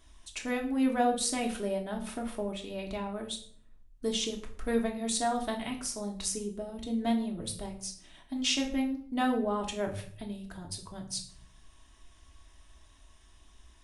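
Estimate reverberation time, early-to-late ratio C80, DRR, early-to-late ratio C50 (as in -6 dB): 0.55 s, 14.0 dB, 0.5 dB, 10.0 dB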